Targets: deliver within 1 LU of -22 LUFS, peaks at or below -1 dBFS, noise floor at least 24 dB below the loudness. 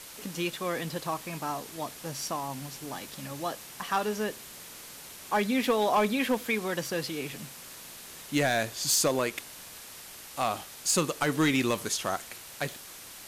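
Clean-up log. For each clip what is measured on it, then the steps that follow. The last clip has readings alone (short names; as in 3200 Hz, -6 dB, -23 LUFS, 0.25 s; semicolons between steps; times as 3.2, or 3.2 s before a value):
clipped 0.3%; flat tops at -18.0 dBFS; noise floor -46 dBFS; noise floor target -54 dBFS; loudness -30.0 LUFS; peak -18.0 dBFS; loudness target -22.0 LUFS
-> clip repair -18 dBFS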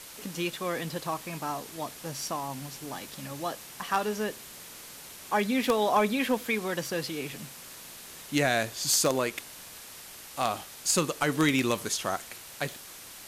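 clipped 0.0%; noise floor -46 dBFS; noise floor target -54 dBFS
-> denoiser 8 dB, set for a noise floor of -46 dBFS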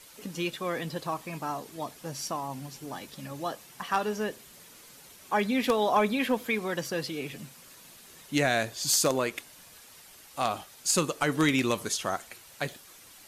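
noise floor -52 dBFS; noise floor target -54 dBFS
-> denoiser 6 dB, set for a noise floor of -52 dBFS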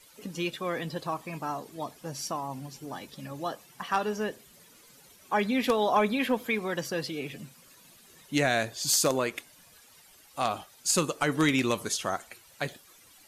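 noise floor -57 dBFS; loudness -29.5 LUFS; peak -9.5 dBFS; loudness target -22.0 LUFS
-> gain +7.5 dB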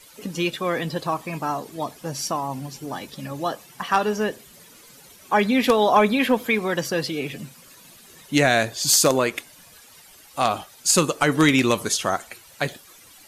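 loudness -22.0 LUFS; peak -2.0 dBFS; noise floor -49 dBFS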